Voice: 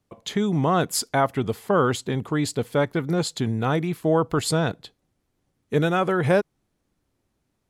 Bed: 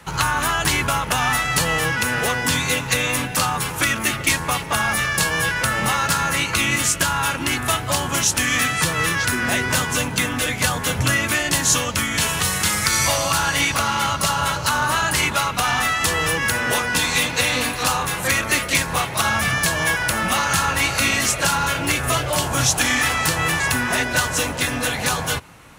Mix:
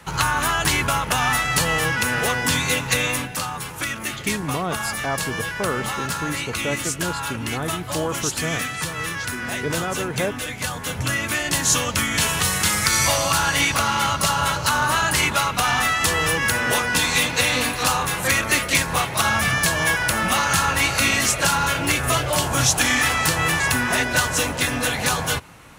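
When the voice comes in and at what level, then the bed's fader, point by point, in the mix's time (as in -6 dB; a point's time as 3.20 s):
3.90 s, -5.5 dB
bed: 3.05 s -0.5 dB
3.42 s -7 dB
10.65 s -7 dB
11.92 s 0 dB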